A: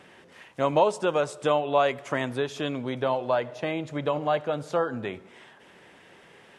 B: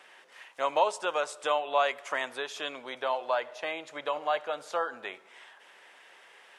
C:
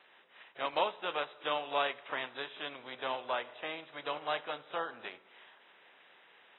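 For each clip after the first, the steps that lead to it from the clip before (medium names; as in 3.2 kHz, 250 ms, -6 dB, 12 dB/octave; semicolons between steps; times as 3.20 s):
high-pass 740 Hz 12 dB/octave
spectral contrast reduction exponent 0.69; trim -6.5 dB; AAC 16 kbps 24 kHz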